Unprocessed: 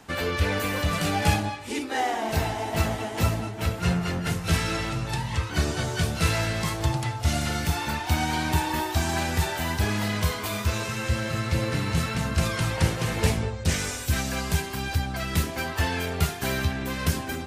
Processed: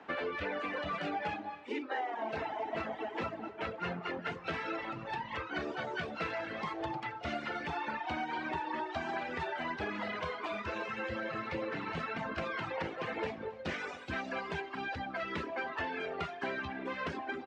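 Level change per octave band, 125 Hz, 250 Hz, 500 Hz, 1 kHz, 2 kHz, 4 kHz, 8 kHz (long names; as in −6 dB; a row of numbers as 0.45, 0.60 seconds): −23.0 dB, −12.0 dB, −7.0 dB, −6.5 dB, −7.5 dB, −15.0 dB, below −30 dB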